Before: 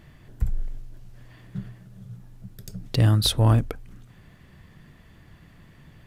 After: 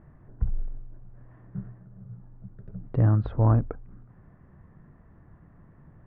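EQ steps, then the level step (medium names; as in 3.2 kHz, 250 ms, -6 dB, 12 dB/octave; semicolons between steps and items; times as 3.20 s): low-pass 1.4 kHz 24 dB/octave; -2.0 dB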